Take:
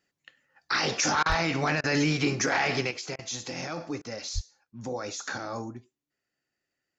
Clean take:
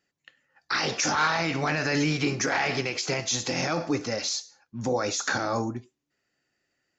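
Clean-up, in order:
clipped peaks rebuilt −14.5 dBFS
high-pass at the plosives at 0:01.28/0:04.34
repair the gap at 0:01.23/0:01.81/0:03.16/0:04.02, 27 ms
level 0 dB, from 0:02.91 +7.5 dB

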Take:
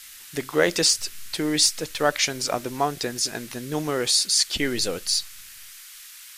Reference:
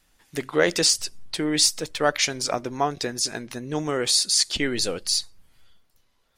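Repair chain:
noise reduction from a noise print 18 dB
level correction +7 dB, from 0:05.69

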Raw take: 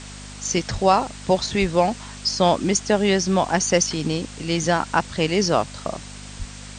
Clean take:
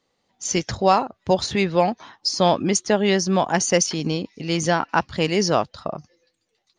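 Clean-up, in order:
hum removal 50.2 Hz, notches 5
0:00.72–0:00.84: high-pass filter 140 Hz 24 dB per octave
0:01.60–0:01.72: high-pass filter 140 Hz 24 dB per octave
0:06.38–0:06.50: high-pass filter 140 Hz 24 dB per octave
broadband denoise 30 dB, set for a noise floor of −38 dBFS

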